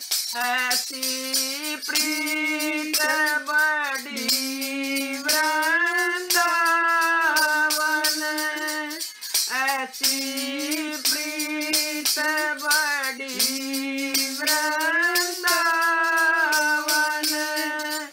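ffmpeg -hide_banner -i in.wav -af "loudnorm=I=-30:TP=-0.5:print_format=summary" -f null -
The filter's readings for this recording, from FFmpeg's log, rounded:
Input Integrated:    -21.7 LUFS
Input True Peak:      -9.9 dBTP
Input LRA:             2.8 LU
Input Threshold:     -31.7 LUFS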